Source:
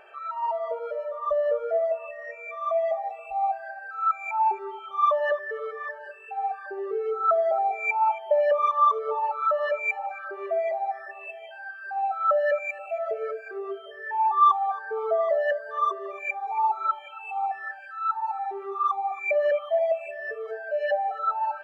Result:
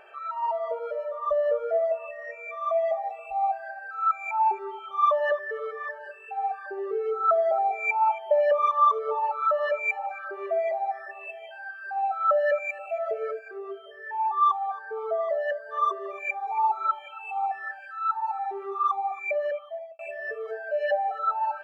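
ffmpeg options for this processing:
-filter_complex "[0:a]asplit=4[s0][s1][s2][s3];[s0]atrim=end=13.392[s4];[s1]atrim=start=13.388:end=15.722,asetpts=PTS-STARTPTS,volume=0.668[s5];[s2]atrim=start=15.718:end=19.99,asetpts=PTS-STARTPTS,afade=t=out:st=3.282:d=0.99[s6];[s3]atrim=start=19.99,asetpts=PTS-STARTPTS,afade=t=in:d=0.004:c=hsin[s7];[s4][s5]acrossfade=d=0.004:c1=hsin:c2=hsin[s8];[s6][s7]concat=n=2:v=0:a=1[s9];[s8][s9]acrossfade=d=0.004:c1=hsin:c2=hsin"

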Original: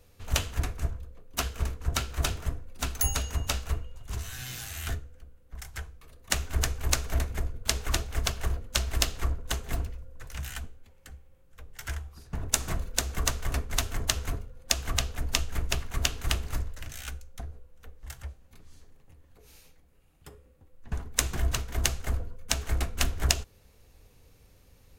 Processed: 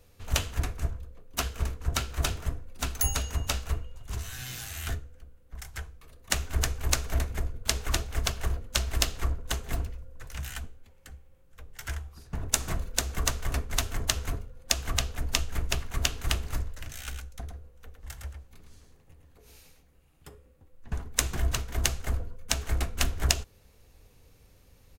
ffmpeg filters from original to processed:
-filter_complex "[0:a]asplit=3[s0][s1][s2];[s0]afade=t=out:st=17.06:d=0.02[s3];[s1]aecho=1:1:109:0.501,afade=t=in:st=17.06:d=0.02,afade=t=out:st=20.29:d=0.02[s4];[s2]afade=t=in:st=20.29:d=0.02[s5];[s3][s4][s5]amix=inputs=3:normalize=0"

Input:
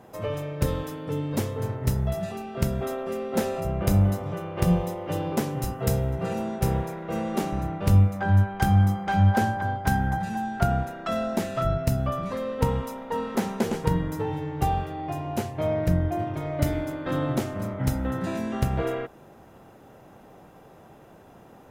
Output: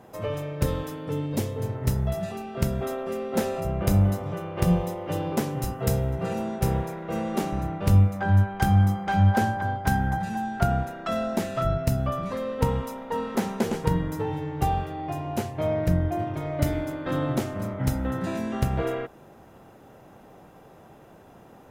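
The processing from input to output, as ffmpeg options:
-filter_complex "[0:a]asettb=1/sr,asplit=3[s0][s1][s2];[s0]atrim=end=1.264[s3];[s1]atrim=start=1.26:end=1.75,asetpts=PTS-STARTPTS,afade=t=in:d=0.004:c=qsin,afade=t=out:st=0.486:d=0.004:c=qsin,equalizer=f=1300:t=o:w=1.1:g=-5.5[s4];[s2]atrim=start=1.746[s5];[s3][s4]acrossfade=d=0.004:c1=hsin:c2=qsin[s6];[s6][s5]acrossfade=d=0.004:c1=qsin:c2=hsin"

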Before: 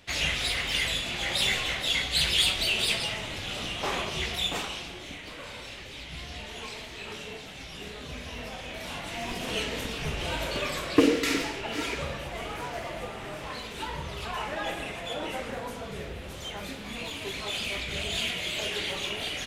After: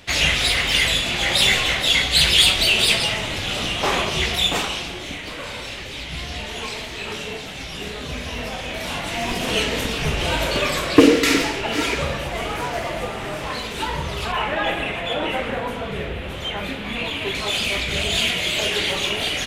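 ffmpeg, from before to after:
-filter_complex "[0:a]asettb=1/sr,asplit=3[s0][s1][s2];[s0]atrim=end=14.324[s3];[s1]atrim=start=14.32:end=17.35,asetpts=PTS-STARTPTS,afade=t=in:d=0.004:c=qsin,afade=t=out:st=3.026:d=0.004:c=qsin,highshelf=f=4000:t=q:w=1.5:g=-8[s4];[s2]atrim=start=17.346[s5];[s3][s4]acrossfade=d=0.004:c1=hsin:c2=qsin[s6];[s6][s5]acrossfade=d=0.004:c1=qsin:c2=hsin,acontrast=54,volume=1.5"

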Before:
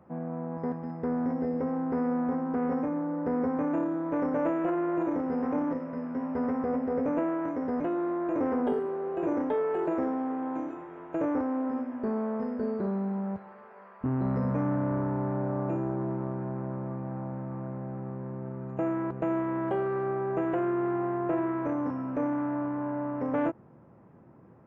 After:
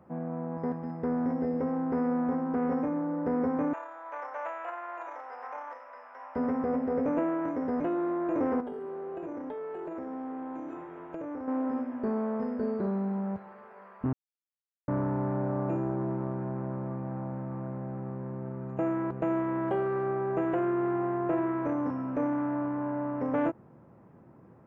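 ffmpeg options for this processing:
-filter_complex "[0:a]asettb=1/sr,asplit=3[s0][s1][s2];[s0]atrim=end=3.734[s3];[s1]atrim=start=3.73:end=6.36,asetpts=PTS-STARTPTS,afade=t=in:d=0.004:c=qsin,afade=t=out:st=2.626:d=0.004:c=qsin,highpass=f=760:w=0.5412,highpass=f=760:w=1.3066[s4];[s2]atrim=start=6.356[s5];[s3][s4]acrossfade=d=0.004:c1=hsin:c2=qsin[s6];[s6][s5]acrossfade=d=0.004:c1=qsin:c2=hsin,asettb=1/sr,asplit=3[s7][s8][s9];[s7]atrim=end=8.604[s10];[s8]atrim=start=8.6:end=11.48,asetpts=PTS-STARTPTS,afade=t=in:d=0.004:c=qsin,afade=t=out:st=2.876:d=0.004:c=qsin,acompressor=threshold=0.02:ratio=12:attack=3.2:release=140:knee=1:detection=peak[s11];[s9]atrim=start=11.476[s12];[s10][s11]acrossfade=d=0.004:c1=hsin:c2=qsin[s13];[s13][s12]acrossfade=d=0.004:c1=qsin:c2=hsin,asplit=3[s14][s15][s16];[s14]atrim=end=14.13,asetpts=PTS-STARTPTS,afade=t=out:st=14.126:d=0.004:c=hsin[s17];[s15]atrim=start=14.13:end=14.88,asetpts=PTS-STARTPTS,volume=0[s18];[s16]atrim=start=14.88,asetpts=PTS-STARTPTS,afade=t=in:d=0.004:c=hsin[s19];[s17][s18][s19]concat=n=3:v=0:a=1"

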